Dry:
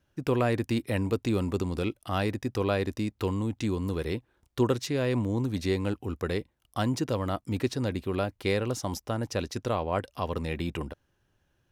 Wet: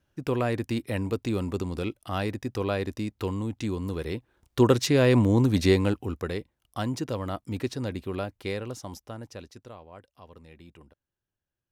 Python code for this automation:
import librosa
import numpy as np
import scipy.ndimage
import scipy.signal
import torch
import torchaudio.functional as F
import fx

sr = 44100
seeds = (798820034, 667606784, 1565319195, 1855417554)

y = fx.gain(x, sr, db=fx.line((4.13, -1.0), (4.83, 7.5), (5.69, 7.5), (6.34, -2.0), (8.08, -2.0), (9.21, -9.0), (9.88, -18.5)))